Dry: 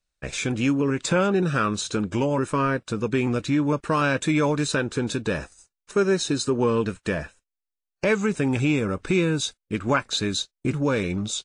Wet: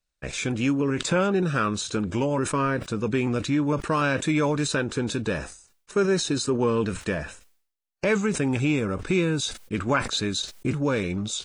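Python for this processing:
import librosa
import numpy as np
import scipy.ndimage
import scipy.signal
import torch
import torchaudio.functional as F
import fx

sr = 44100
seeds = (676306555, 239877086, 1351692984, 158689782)

y = fx.sustainer(x, sr, db_per_s=100.0)
y = y * librosa.db_to_amplitude(-1.5)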